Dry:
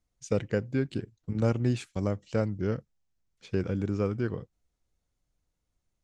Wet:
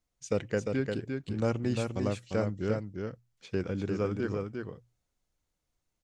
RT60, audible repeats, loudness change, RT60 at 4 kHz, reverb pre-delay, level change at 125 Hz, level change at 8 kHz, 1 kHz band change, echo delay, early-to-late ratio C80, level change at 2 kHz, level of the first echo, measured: no reverb audible, 1, −2.0 dB, no reverb audible, no reverb audible, −3.5 dB, +1.5 dB, +1.0 dB, 350 ms, no reverb audible, +1.0 dB, −4.5 dB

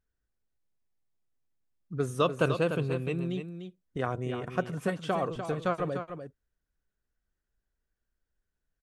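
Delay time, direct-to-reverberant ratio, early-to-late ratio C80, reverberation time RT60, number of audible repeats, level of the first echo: 297 ms, no reverb audible, no reverb audible, no reverb audible, 1, −8.5 dB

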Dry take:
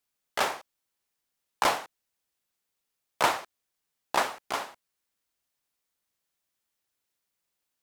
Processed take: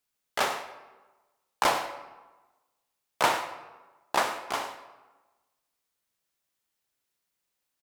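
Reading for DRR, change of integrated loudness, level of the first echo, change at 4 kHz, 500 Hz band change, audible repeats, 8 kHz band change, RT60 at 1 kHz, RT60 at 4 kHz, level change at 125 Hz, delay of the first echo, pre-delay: 7.0 dB, 0.0 dB, −13.0 dB, +0.5 dB, +1.0 dB, 1, +0.5 dB, 1.2 s, 0.80 s, +1.0 dB, 99 ms, 27 ms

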